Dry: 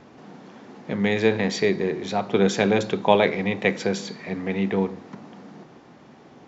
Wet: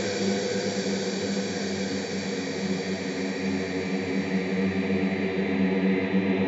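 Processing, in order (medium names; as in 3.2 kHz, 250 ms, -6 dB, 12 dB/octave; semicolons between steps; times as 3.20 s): Paulstretch 13×, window 1.00 s, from 4.02 s; whistle 4 kHz -53 dBFS; trim +2 dB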